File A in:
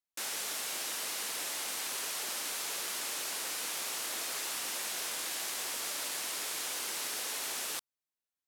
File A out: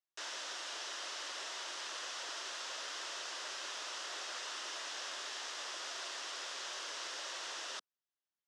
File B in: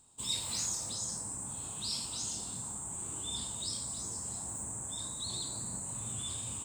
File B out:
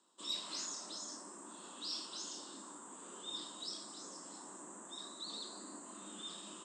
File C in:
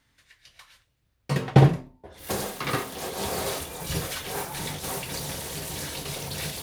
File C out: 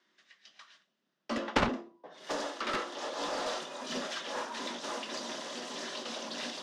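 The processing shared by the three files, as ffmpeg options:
-af "highpass=230,equalizer=f=370:t=q:w=4:g=-6,equalizer=f=710:t=q:w=4:g=-5,equalizer=f=2200:t=q:w=4:g=-8,equalizer=f=4200:t=q:w=4:g=-5,lowpass=f=5600:w=0.5412,lowpass=f=5600:w=1.3066,afreqshift=88,aeval=exprs='0.398*(cos(1*acos(clip(val(0)/0.398,-1,1)))-cos(1*PI/2))+0.178*(cos(7*acos(clip(val(0)/0.398,-1,1)))-cos(7*PI/2))+0.00708*(cos(8*acos(clip(val(0)/0.398,-1,1)))-cos(8*PI/2))':c=same,volume=0.447"

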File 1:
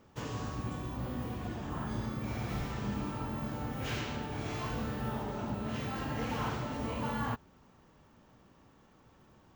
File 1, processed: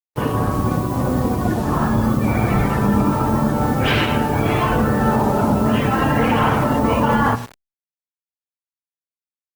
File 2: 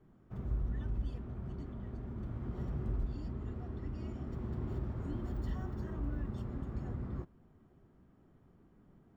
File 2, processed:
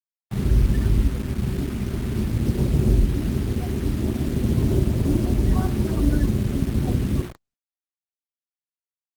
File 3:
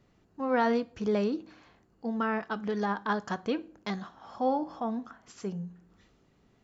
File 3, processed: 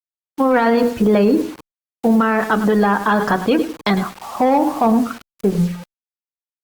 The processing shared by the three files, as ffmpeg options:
-filter_complex "[0:a]acrossover=split=6700[s0][s1];[s1]acompressor=threshold=0.00112:ratio=4:attack=1:release=60[s2];[s0][s2]amix=inputs=2:normalize=0,afftdn=nr=32:nf=-45,lowshelf=f=100:g=-5,bandreject=f=60:t=h:w=6,bandreject=f=120:t=h:w=6,bandreject=f=180:t=h:w=6,bandreject=f=240:t=h:w=6,bandreject=f=300:t=h:w=6,bandreject=f=360:t=h:w=6,bandreject=f=420:t=h:w=6,bandreject=f=480:t=h:w=6,aecho=1:1:103|206|309:0.141|0.0396|0.0111,asplit=2[s3][s4];[s4]aeval=exprs='sgn(val(0))*max(abs(val(0))-0.00501,0)':c=same,volume=0.631[s5];[s3][s5]amix=inputs=2:normalize=0,acrusher=bits=8:mix=0:aa=0.000001,acrossover=split=490|1100[s6][s7][s8];[s7]asoftclip=type=hard:threshold=0.0422[s9];[s6][s9][s8]amix=inputs=3:normalize=0,alimiter=level_in=16.8:limit=0.891:release=50:level=0:latency=1,volume=0.501" -ar 48000 -c:a libopus -b:a 32k

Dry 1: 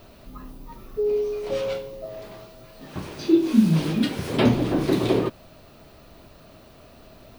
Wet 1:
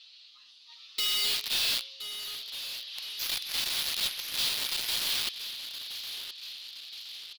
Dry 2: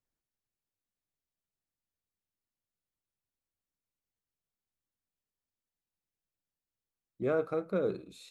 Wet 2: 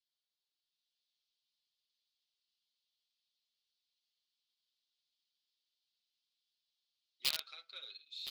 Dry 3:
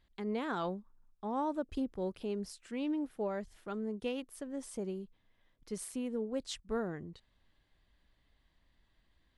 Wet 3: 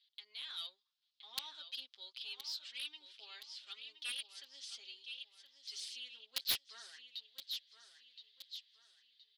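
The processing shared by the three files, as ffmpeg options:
-af "aecho=1:1:7.5:0.78,dynaudnorm=f=130:g=11:m=2,aeval=exprs='(mod(6.31*val(0)+1,2)-1)/6.31':c=same,asuperpass=centerf=3900:order=4:qfactor=2.2,asoftclip=type=hard:threshold=0.0398,aecho=1:1:1020|2040|3060|4080:0.316|0.117|0.0433|0.016,aeval=exprs='0.0562*(cos(1*acos(clip(val(0)/0.0562,-1,1)))-cos(1*PI/2))+0.00126*(cos(4*acos(clip(val(0)/0.0562,-1,1)))-cos(4*PI/2))+0.0282*(cos(7*acos(clip(val(0)/0.0562,-1,1)))-cos(7*PI/2))':c=same"

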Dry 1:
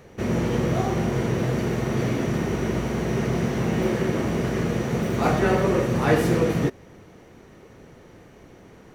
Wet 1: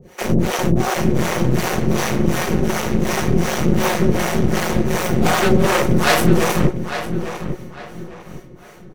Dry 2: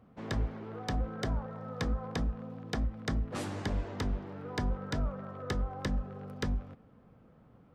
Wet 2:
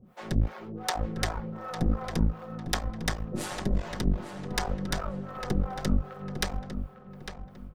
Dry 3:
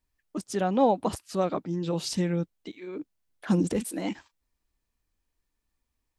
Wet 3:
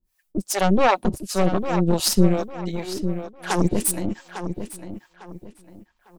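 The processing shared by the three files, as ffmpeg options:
-filter_complex "[0:a]aecho=1:1:5.5:0.54,aeval=exprs='0.447*(cos(1*acos(clip(val(0)/0.447,-1,1)))-cos(1*PI/2))+0.0794*(cos(8*acos(clip(val(0)/0.447,-1,1)))-cos(8*PI/2))':c=same,acrossover=split=480[s0][s1];[s0]aeval=exprs='val(0)*(1-1/2+1/2*cos(2*PI*2.7*n/s))':c=same[s2];[s1]aeval=exprs='val(0)*(1-1/2-1/2*cos(2*PI*2.7*n/s))':c=same[s3];[s2][s3]amix=inputs=2:normalize=0,crystalizer=i=1.5:c=0,asplit=2[s4][s5];[s5]adelay=852,lowpass=f=3700:p=1,volume=0.355,asplit=2[s6][s7];[s7]adelay=852,lowpass=f=3700:p=1,volume=0.31,asplit=2[s8][s9];[s9]adelay=852,lowpass=f=3700:p=1,volume=0.31,asplit=2[s10][s11];[s11]adelay=852,lowpass=f=3700:p=1,volume=0.31[s12];[s4][s6][s8][s10][s12]amix=inputs=5:normalize=0,volume=2.11"

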